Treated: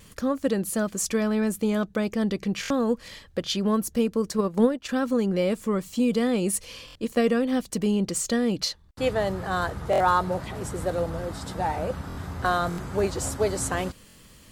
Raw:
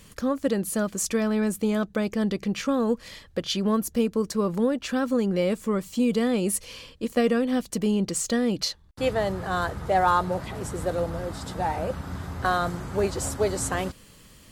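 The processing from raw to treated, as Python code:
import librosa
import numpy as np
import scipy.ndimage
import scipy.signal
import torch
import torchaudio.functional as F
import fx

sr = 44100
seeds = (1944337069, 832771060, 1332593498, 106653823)

y = fx.transient(x, sr, attack_db=10, sustain_db=-10, at=(4.38, 4.89))
y = fx.vibrato(y, sr, rate_hz=1.5, depth_cents=26.0)
y = fx.buffer_glitch(y, sr, at_s=(2.61, 6.86, 9.91, 12.08, 12.69, 14.07), block=1024, repeats=3)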